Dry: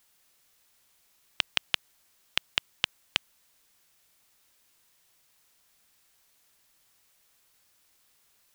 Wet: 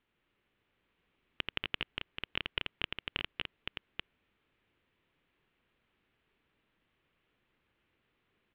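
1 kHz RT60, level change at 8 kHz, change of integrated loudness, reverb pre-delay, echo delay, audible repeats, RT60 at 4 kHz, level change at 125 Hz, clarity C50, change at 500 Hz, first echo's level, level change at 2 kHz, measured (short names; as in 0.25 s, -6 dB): none, under -30 dB, -7.5 dB, none, 84 ms, 4, none, +3.5 dB, none, +0.5 dB, -4.5 dB, -4.0 dB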